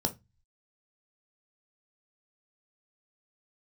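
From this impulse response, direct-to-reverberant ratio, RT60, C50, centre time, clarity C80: 6.0 dB, 0.20 s, 17.5 dB, 7 ms, 28.0 dB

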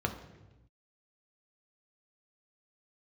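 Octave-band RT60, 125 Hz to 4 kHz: 1.6, 1.3, 1.1, 1.0, 0.95, 0.95 seconds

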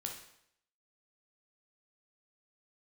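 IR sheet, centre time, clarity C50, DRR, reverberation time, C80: 28 ms, 5.5 dB, 1.0 dB, 0.70 s, 9.5 dB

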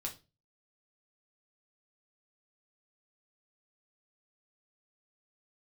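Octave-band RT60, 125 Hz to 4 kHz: 0.50, 0.40, 0.35, 0.25, 0.25, 0.25 seconds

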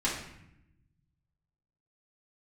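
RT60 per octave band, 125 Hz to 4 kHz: 2.0, 1.4, 0.80, 0.75, 0.85, 0.60 seconds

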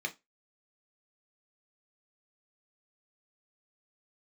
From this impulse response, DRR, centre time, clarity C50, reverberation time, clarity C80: 3.5 dB, 7 ms, 19.0 dB, 0.20 s, 28.5 dB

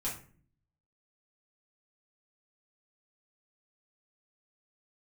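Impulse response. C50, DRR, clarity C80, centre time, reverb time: 7.0 dB, −7.5 dB, 12.5 dB, 28 ms, 0.45 s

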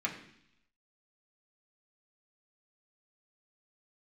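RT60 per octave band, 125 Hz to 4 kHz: 0.90, 0.85, 0.65, 0.70, 0.85, 0.95 seconds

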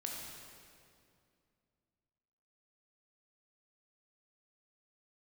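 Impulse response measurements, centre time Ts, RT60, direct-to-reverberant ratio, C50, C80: 105 ms, 2.4 s, −1.5 dB, 0.5 dB, 1.5 dB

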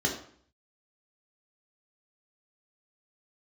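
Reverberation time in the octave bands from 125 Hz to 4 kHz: 0.70, 0.60, 0.55, 0.55, 0.55, 0.45 seconds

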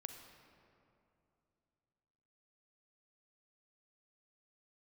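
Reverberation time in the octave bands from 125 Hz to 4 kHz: 3.4, 3.2, 2.9, 2.6, 2.1, 1.4 seconds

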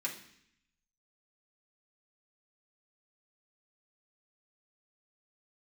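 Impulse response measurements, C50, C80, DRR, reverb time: 9.0 dB, 12.5 dB, −4.5 dB, 0.65 s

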